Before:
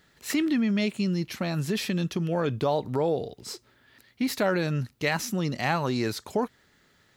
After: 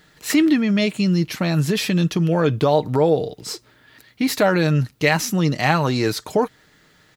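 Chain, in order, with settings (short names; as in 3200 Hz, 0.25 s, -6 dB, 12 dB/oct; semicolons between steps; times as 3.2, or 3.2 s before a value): comb 6.5 ms, depth 34%; gain +7.5 dB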